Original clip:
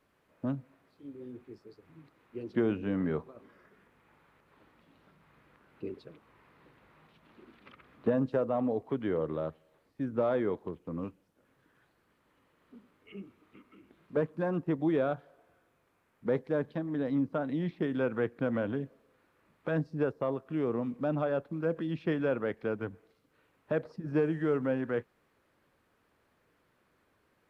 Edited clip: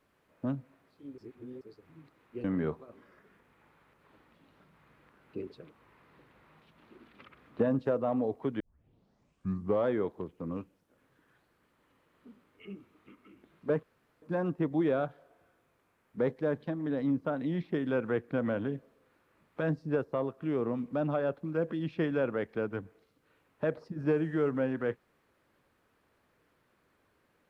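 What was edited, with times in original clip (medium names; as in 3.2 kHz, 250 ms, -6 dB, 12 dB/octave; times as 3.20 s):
1.18–1.61 s: reverse
2.44–2.91 s: delete
9.07 s: tape start 1.29 s
14.30 s: insert room tone 0.39 s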